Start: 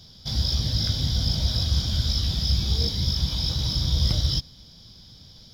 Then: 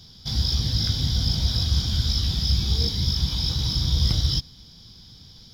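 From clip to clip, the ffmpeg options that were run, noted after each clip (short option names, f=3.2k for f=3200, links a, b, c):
-af "equalizer=f=590:t=o:w=0.27:g=-10,volume=1dB"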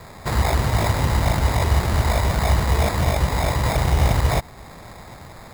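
-filter_complex "[0:a]asplit=2[a][b];[b]acompressor=threshold=-31dB:ratio=6,volume=-2dB[c];[a][c]amix=inputs=2:normalize=0,acrusher=samples=15:mix=1:aa=0.000001,volume=2dB"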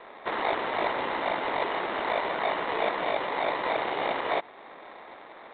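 -af "highpass=f=320:w=0.5412,highpass=f=320:w=1.3066,volume=-2.5dB" -ar 8000 -c:a adpcm_ima_wav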